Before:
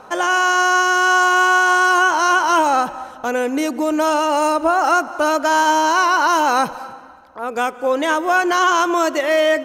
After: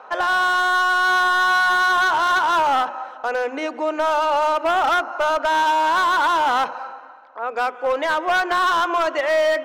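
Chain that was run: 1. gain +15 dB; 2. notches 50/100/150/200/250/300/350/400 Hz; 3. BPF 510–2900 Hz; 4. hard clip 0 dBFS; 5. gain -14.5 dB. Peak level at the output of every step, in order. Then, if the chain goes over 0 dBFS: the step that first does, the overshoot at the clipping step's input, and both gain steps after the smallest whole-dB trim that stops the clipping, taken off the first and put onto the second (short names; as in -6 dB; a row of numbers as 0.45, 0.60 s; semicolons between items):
+10.5, +10.5, +9.5, 0.0, -14.5 dBFS; step 1, 9.5 dB; step 1 +5 dB, step 5 -4.5 dB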